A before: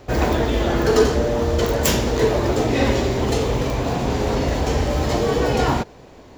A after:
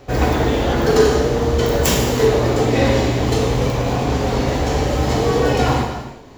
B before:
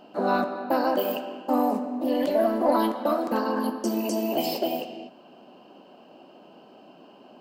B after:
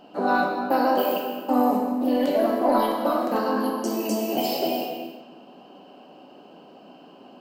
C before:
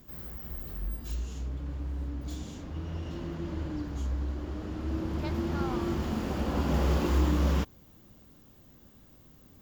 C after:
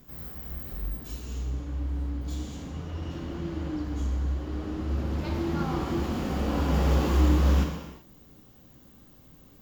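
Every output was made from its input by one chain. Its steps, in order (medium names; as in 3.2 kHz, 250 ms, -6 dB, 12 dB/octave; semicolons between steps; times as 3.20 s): gated-style reverb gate 410 ms falling, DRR 1 dB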